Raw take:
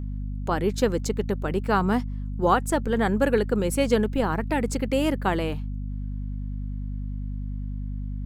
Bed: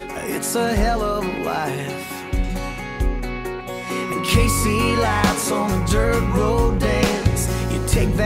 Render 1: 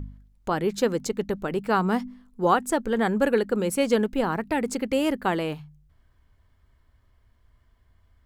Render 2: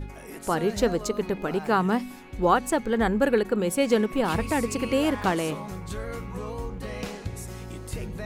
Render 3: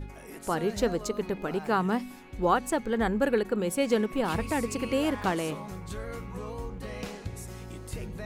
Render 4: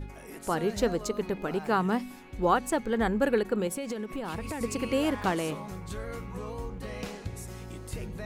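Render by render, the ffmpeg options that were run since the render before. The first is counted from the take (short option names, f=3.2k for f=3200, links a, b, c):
-af "bandreject=f=50:t=h:w=4,bandreject=f=100:t=h:w=4,bandreject=f=150:t=h:w=4,bandreject=f=200:t=h:w=4,bandreject=f=250:t=h:w=4"
-filter_complex "[1:a]volume=-16dB[a];[0:a][a]amix=inputs=2:normalize=0"
-af "volume=-3.5dB"
-filter_complex "[0:a]asettb=1/sr,asplit=3[a][b][c];[a]atrim=end=3.674[d];[b]atrim=start=3.67:end=4.61,asetpts=PTS-STARTPTS,afade=t=in:d=0.004:c=qsin,afade=t=out:st=0.936:d=0.004:c=qsin,acompressor=threshold=-30dB:ratio=10:attack=3.2:release=140:knee=1:detection=peak[e];[c]atrim=start=4.606[f];[d][e]acrossfade=d=0.004:c1=hsin:c2=qsin[g];[g][f]acrossfade=d=0.004:c1=qsin:c2=hsin"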